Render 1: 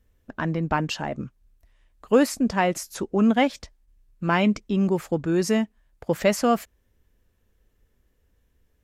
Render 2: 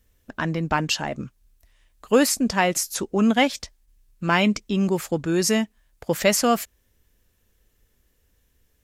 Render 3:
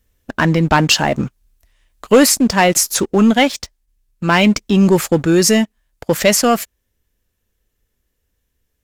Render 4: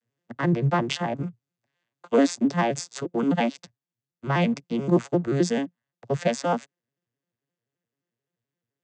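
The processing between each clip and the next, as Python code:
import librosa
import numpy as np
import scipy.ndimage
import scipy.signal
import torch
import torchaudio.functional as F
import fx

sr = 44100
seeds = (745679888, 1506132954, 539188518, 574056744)

y1 = fx.high_shelf(x, sr, hz=2500.0, db=10.5)
y2 = fx.rider(y1, sr, range_db=10, speed_s=0.5)
y2 = fx.leveller(y2, sr, passes=2)
y2 = y2 * librosa.db_to_amplitude(2.5)
y3 = fx.vocoder_arp(y2, sr, chord='minor triad', root=46, every_ms=87)
y3 = fx.low_shelf(y3, sr, hz=250.0, db=-11.0)
y3 = y3 * librosa.db_to_amplitude(-4.5)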